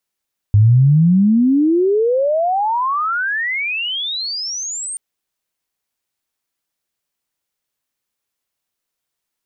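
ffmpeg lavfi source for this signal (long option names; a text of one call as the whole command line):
ffmpeg -f lavfi -i "aevalsrc='pow(10,(-6.5-16.5*t/4.43)/20)*sin(2*PI*100*4.43/log(8900/100)*(exp(log(8900/100)*t/4.43)-1))':duration=4.43:sample_rate=44100" out.wav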